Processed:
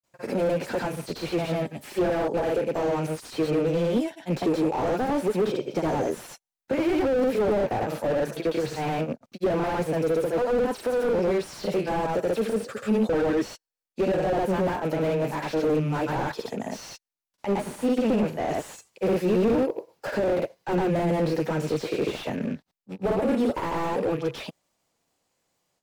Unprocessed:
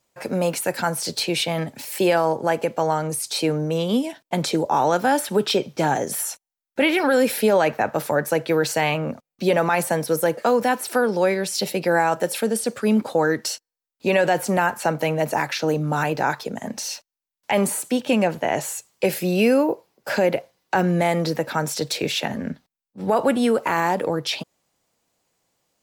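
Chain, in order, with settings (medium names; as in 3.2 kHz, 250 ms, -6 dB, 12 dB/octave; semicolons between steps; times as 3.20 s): rattle on loud lows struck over -31 dBFS, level -31 dBFS; granulator 136 ms, grains 20 per s, spray 100 ms, pitch spread up and down by 0 st; in parallel at -6 dB: hard clipper -25 dBFS, distortion -7 dB; on the sum: dynamic bell 410 Hz, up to +5 dB, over -35 dBFS, Q 1.2; slew-rate limiter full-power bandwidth 65 Hz; trim -3.5 dB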